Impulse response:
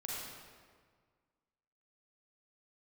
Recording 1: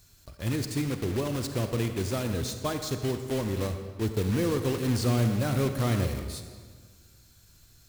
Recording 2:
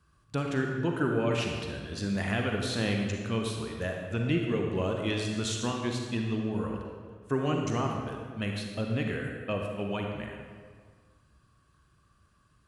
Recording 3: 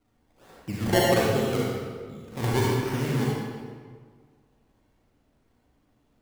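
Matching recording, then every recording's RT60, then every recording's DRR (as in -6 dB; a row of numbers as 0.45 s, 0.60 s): 3; 1.7 s, 1.7 s, 1.7 s; 7.0 dB, 1.0 dB, -5.5 dB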